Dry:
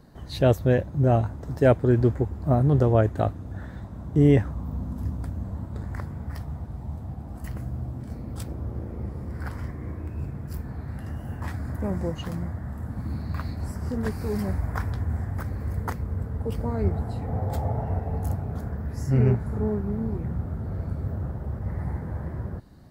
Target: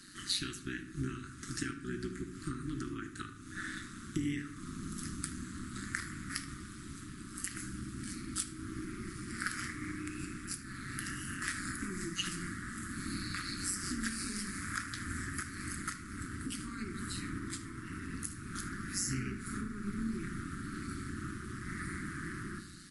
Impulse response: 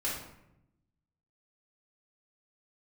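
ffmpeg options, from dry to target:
-filter_complex "[0:a]highpass=frequency=440:poles=1,aemphasis=mode=production:type=bsi,acompressor=threshold=-38dB:ratio=16,tremolo=f=190:d=0.788,asuperstop=centerf=650:order=12:qfactor=0.73,asplit=2[link_01][link_02];[link_02]adelay=76,lowpass=frequency=2000:poles=1,volume=-10.5dB,asplit=2[link_03][link_04];[link_04]adelay=76,lowpass=frequency=2000:poles=1,volume=0.5,asplit=2[link_05][link_06];[link_06]adelay=76,lowpass=frequency=2000:poles=1,volume=0.5,asplit=2[link_07][link_08];[link_08]adelay=76,lowpass=frequency=2000:poles=1,volume=0.5,asplit=2[link_09][link_10];[link_10]adelay=76,lowpass=frequency=2000:poles=1,volume=0.5[link_11];[link_01][link_03][link_05][link_07][link_09][link_11]amix=inputs=6:normalize=0,asplit=2[link_12][link_13];[1:a]atrim=start_sample=2205[link_14];[link_13][link_14]afir=irnorm=-1:irlink=0,volume=-13dB[link_15];[link_12][link_15]amix=inputs=2:normalize=0,volume=10.5dB" -ar 24000 -c:a libmp3lame -b:a 48k

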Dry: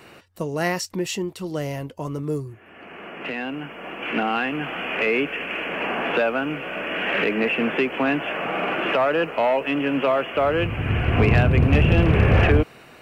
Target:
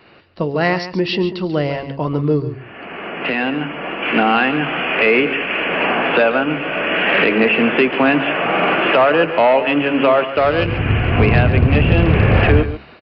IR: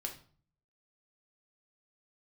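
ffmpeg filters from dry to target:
-filter_complex "[0:a]bandreject=frequency=69.06:width_type=h:width=4,bandreject=frequency=138.12:width_type=h:width=4,bandreject=frequency=207.18:width_type=h:width=4,bandreject=frequency=276.24:width_type=h:width=4,bandreject=frequency=345.3:width_type=h:width=4,bandreject=frequency=414.36:width_type=h:width=4,bandreject=frequency=483.42:width_type=h:width=4,dynaudnorm=framelen=190:gausssize=3:maxgain=11.5dB,asettb=1/sr,asplit=3[link_01][link_02][link_03];[link_01]atrim=end=10.254[link_04];[link_02]atrim=start=10.25:end=10.68,asetpts=PTS-STARTPTS,afade=type=in:duration=0.004:curve=qsin,afade=type=out:start_time=0.426:duration=0.004:curve=qsin,aeval=exprs='0.794*(cos(1*acos(clip(val(0)/0.794,-1,1)))-cos(1*PI/2))+0.0794*(cos(3*acos(clip(val(0)/0.794,-1,1)))-cos(3*PI/2))+0.0282*(cos(7*acos(clip(val(0)/0.794,-1,1)))-cos(7*PI/2))':channel_layout=same[link_05];[link_03]atrim=start=10.676[link_06];[link_04][link_05]acrossfade=duration=0.004:curve1=hsin:curve2=qsin[link_07];[link_07][link_06]acrossfade=duration=0.004:curve1=qsin:curve2=hsin,asplit=2[link_08][link_09];[link_09]aecho=0:1:140:0.251[link_10];[link_08][link_10]amix=inputs=2:normalize=0,aresample=11025,aresample=44100,volume=-1.5dB"

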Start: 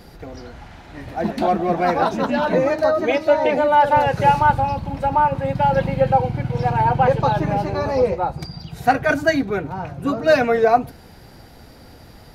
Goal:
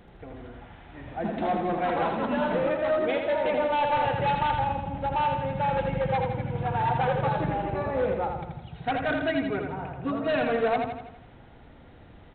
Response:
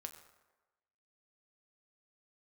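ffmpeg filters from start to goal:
-af "aresample=8000,asoftclip=type=hard:threshold=-14.5dB,aresample=44100,aecho=1:1:82|164|246|328|410|492|574:0.562|0.298|0.158|0.0837|0.0444|0.0235|0.0125,volume=-8dB"

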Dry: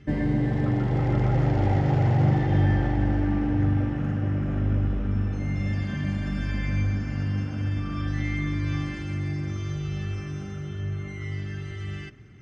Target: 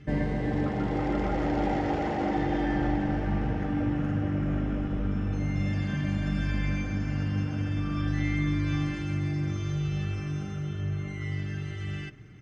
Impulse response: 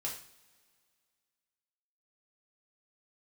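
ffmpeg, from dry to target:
-af "aecho=1:1:6.5:0.3,afftfilt=real='re*lt(hypot(re,im),0.562)':imag='im*lt(hypot(re,im),0.562)':win_size=1024:overlap=0.75"

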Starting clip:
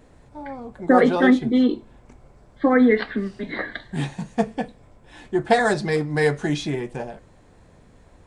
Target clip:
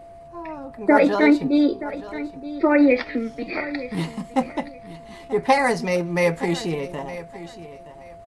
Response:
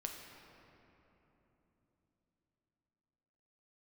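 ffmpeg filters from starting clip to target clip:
-af "aecho=1:1:922|1844:0.178|0.0391,asetrate=50951,aresample=44100,atempo=0.865537,aeval=exprs='val(0)+0.00891*sin(2*PI*680*n/s)':channel_layout=same"

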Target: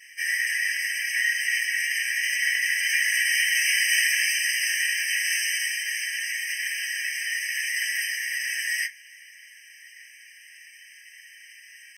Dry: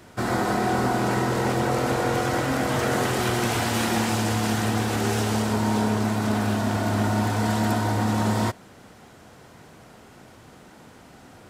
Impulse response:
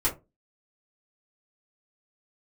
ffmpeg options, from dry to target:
-filter_complex "[0:a]atempo=0.96[link_01];[1:a]atrim=start_sample=2205,afade=type=out:start_time=0.34:duration=0.01,atrim=end_sample=15435,asetrate=43218,aresample=44100[link_02];[link_01][link_02]afir=irnorm=-1:irlink=0,afftfilt=real='re*eq(mod(floor(b*sr/1024/1600),2),1)':imag='im*eq(mod(floor(b*sr/1024/1600),2),1)':win_size=1024:overlap=0.75,volume=2dB"

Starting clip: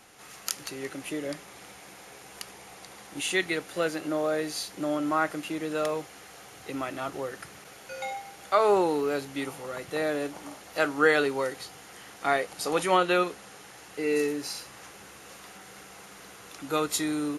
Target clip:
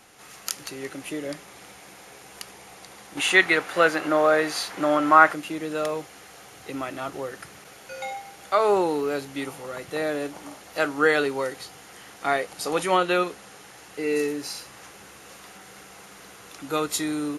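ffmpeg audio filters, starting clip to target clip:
ffmpeg -i in.wav -filter_complex "[0:a]asettb=1/sr,asplit=3[link_01][link_02][link_03];[link_01]atrim=end=3.174[link_04];[link_02]atrim=start=3.17:end=5.34,asetpts=PTS-STARTPTS,afade=type=in:duration=0.004:curve=qsin,afade=type=out:start_time=2.166:duration=0.004:curve=qsin,equalizer=frequency=1300:width_type=o:width=2.5:gain=12[link_05];[link_03]atrim=start=5.336[link_06];[link_04][link_05]acrossfade=duration=0.004:curve1=hsin:curve2=qsin[link_07];[link_07][link_06]acrossfade=duration=0.004:curve1=qsin:curve2=hsin,volume=1.5dB" out.wav

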